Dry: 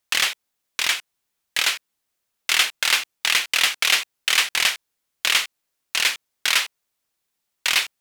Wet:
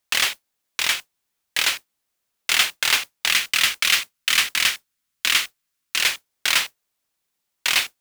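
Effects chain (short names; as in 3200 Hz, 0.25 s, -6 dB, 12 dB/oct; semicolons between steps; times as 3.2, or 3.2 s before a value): 3.3–6.02 band shelf 560 Hz -8.5 dB; modulation noise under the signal 13 dB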